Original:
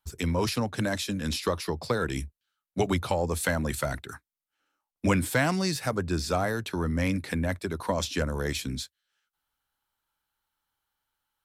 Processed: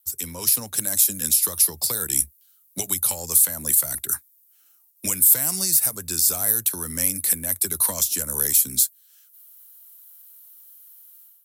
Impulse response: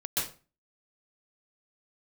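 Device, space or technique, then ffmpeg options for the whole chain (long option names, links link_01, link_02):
FM broadcast chain: -filter_complex "[0:a]highpass=51,dynaudnorm=framelen=510:gausssize=3:maxgain=14.5dB,acrossover=split=160|1400|7100[link_01][link_02][link_03][link_04];[link_01]acompressor=threshold=-31dB:ratio=4[link_05];[link_02]acompressor=threshold=-25dB:ratio=4[link_06];[link_03]acompressor=threshold=-36dB:ratio=4[link_07];[link_04]acompressor=threshold=-30dB:ratio=4[link_08];[link_05][link_06][link_07][link_08]amix=inputs=4:normalize=0,aemphasis=mode=production:type=75fm,alimiter=limit=-10dB:level=0:latency=1:release=303,asoftclip=type=hard:threshold=-12dB,lowpass=frequency=15000:width=0.5412,lowpass=frequency=15000:width=1.3066,aemphasis=mode=production:type=75fm,volume=-8.5dB"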